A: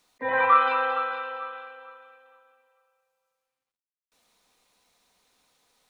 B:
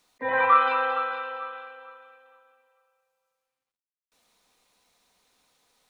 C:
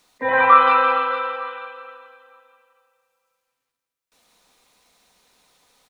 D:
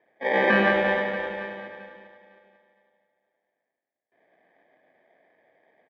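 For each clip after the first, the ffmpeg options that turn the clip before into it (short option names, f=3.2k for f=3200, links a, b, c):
-af anull
-af "aecho=1:1:168|336|504|672|840|1008:0.398|0.195|0.0956|0.0468|0.023|0.0112,volume=6.5dB"
-af "acrusher=samples=32:mix=1:aa=0.000001,highpass=380,equalizer=f=390:t=q:w=4:g=-4,equalizer=f=660:t=q:w=4:g=7,equalizer=f=1k:t=q:w=4:g=-9,equalizer=f=1.7k:t=q:w=4:g=10,lowpass=f=2.7k:w=0.5412,lowpass=f=2.7k:w=1.3066,aecho=1:1:99.13|174.9:0.631|0.316,volume=-3dB"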